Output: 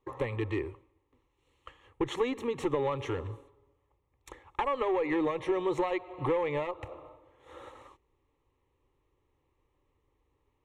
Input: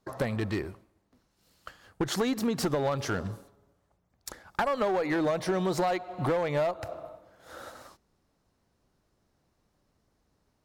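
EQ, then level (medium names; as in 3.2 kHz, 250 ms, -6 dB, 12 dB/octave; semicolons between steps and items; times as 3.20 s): distance through air 96 m; static phaser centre 1 kHz, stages 8; +1.5 dB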